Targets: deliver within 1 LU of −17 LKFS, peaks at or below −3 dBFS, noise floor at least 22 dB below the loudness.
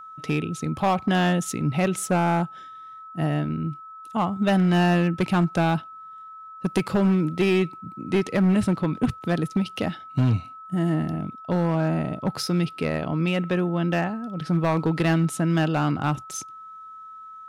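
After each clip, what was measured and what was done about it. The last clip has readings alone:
share of clipped samples 1.6%; peaks flattened at −15.0 dBFS; interfering tone 1,300 Hz; level of the tone −39 dBFS; integrated loudness −24.0 LKFS; sample peak −15.0 dBFS; target loudness −17.0 LKFS
→ clipped peaks rebuilt −15 dBFS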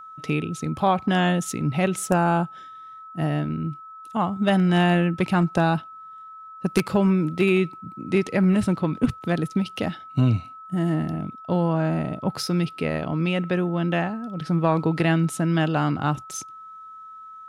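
share of clipped samples 0.0%; interfering tone 1,300 Hz; level of the tone −39 dBFS
→ notch filter 1,300 Hz, Q 30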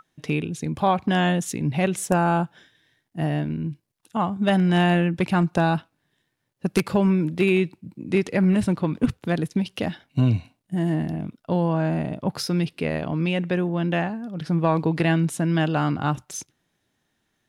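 interfering tone none found; integrated loudness −23.5 LKFS; sample peak −6.0 dBFS; target loudness −17.0 LKFS
→ level +6.5 dB
brickwall limiter −3 dBFS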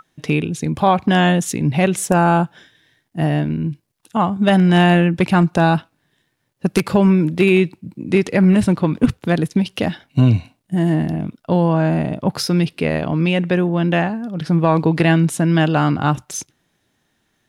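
integrated loudness −17.5 LKFS; sample peak −3.0 dBFS; background noise floor −68 dBFS

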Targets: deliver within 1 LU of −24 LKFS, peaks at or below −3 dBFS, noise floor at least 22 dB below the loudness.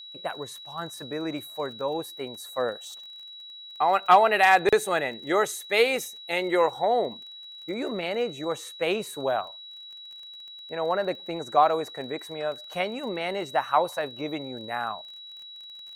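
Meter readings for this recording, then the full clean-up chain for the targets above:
crackle rate 27 per second; interfering tone 3,900 Hz; level of the tone −41 dBFS; integrated loudness −26.5 LKFS; sample peak −6.5 dBFS; target loudness −24.0 LKFS
→ click removal
notch filter 3,900 Hz, Q 30
level +2.5 dB

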